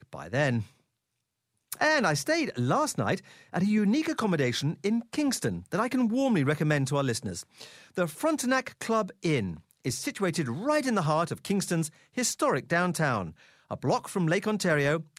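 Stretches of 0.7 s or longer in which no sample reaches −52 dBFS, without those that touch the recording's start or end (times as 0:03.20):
0:00.71–0:01.72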